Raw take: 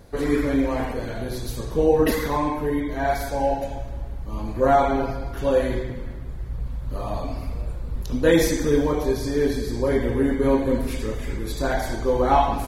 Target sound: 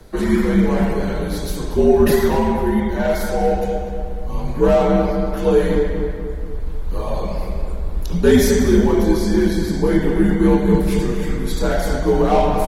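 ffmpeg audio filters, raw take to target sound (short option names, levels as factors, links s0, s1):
-filter_complex "[0:a]afreqshift=-76,acrossover=split=140|670|4900[s0][s1][s2][s3];[s2]asoftclip=type=tanh:threshold=0.0398[s4];[s0][s1][s4][s3]amix=inputs=4:normalize=0,asplit=2[s5][s6];[s6]adelay=239,lowpass=f=1900:p=1,volume=0.501,asplit=2[s7][s8];[s8]adelay=239,lowpass=f=1900:p=1,volume=0.53,asplit=2[s9][s10];[s10]adelay=239,lowpass=f=1900:p=1,volume=0.53,asplit=2[s11][s12];[s12]adelay=239,lowpass=f=1900:p=1,volume=0.53,asplit=2[s13][s14];[s14]adelay=239,lowpass=f=1900:p=1,volume=0.53,asplit=2[s15][s16];[s16]adelay=239,lowpass=f=1900:p=1,volume=0.53,asplit=2[s17][s18];[s18]adelay=239,lowpass=f=1900:p=1,volume=0.53[s19];[s5][s7][s9][s11][s13][s15][s17][s19]amix=inputs=8:normalize=0,volume=1.78"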